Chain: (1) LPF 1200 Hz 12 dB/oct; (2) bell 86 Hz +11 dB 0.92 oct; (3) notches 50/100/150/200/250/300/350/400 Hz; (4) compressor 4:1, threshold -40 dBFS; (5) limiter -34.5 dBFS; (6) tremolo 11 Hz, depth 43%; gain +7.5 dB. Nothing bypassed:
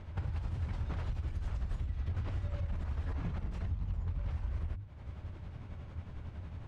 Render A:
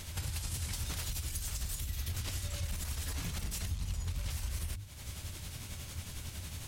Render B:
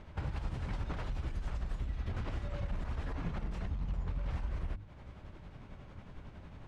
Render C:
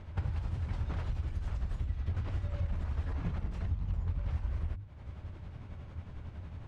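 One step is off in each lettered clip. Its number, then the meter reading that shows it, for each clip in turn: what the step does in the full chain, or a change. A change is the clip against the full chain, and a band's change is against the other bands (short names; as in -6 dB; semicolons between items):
1, 4 kHz band +19.5 dB; 2, 125 Hz band -6.5 dB; 5, crest factor change +2.5 dB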